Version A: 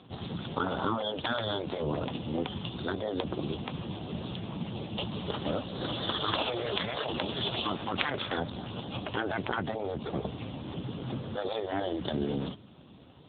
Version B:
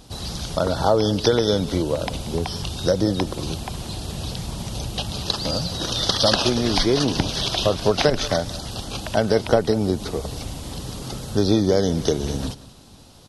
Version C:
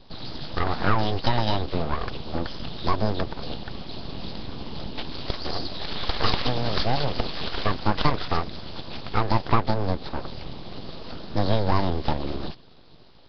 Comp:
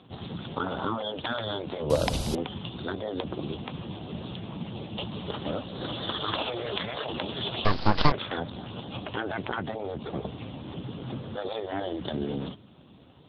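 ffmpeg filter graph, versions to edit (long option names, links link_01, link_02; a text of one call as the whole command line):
ffmpeg -i take0.wav -i take1.wav -i take2.wav -filter_complex "[0:a]asplit=3[link_01][link_02][link_03];[link_01]atrim=end=1.902[link_04];[1:a]atrim=start=1.898:end=2.352[link_05];[link_02]atrim=start=2.348:end=7.652[link_06];[2:a]atrim=start=7.648:end=8.122[link_07];[link_03]atrim=start=8.118[link_08];[link_04][link_05]acrossfade=duration=0.004:curve1=hsin:curve2=hsin[link_09];[link_09][link_06]acrossfade=duration=0.004:curve1=hsin:curve2=hsin[link_10];[link_10][link_07]acrossfade=duration=0.004:curve1=hsin:curve2=hsin[link_11];[link_11][link_08]acrossfade=duration=0.004:curve1=hsin:curve2=hsin" out.wav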